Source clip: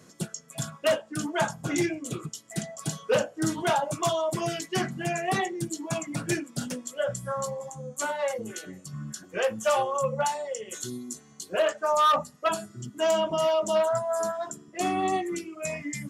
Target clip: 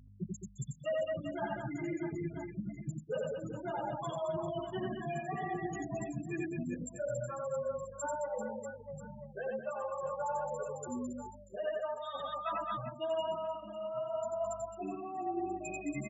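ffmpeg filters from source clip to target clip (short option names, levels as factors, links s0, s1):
-filter_complex "[0:a]afftfilt=real='re*gte(hypot(re,im),0.112)':imag='im*gte(hypot(re,im),0.112)':win_size=1024:overlap=0.75,aeval=exprs='val(0)+0.00251*(sin(2*PI*50*n/s)+sin(2*PI*2*50*n/s)/2+sin(2*PI*3*50*n/s)/3+sin(2*PI*4*50*n/s)/4+sin(2*PI*5*50*n/s)/5)':c=same,aecho=1:1:90|216|392.4|639.4|985.1:0.631|0.398|0.251|0.158|0.1,areverse,acompressor=threshold=0.0282:ratio=8,areverse,asplit=2[s0][s1];[s1]adelay=9,afreqshift=0.91[s2];[s0][s2]amix=inputs=2:normalize=1"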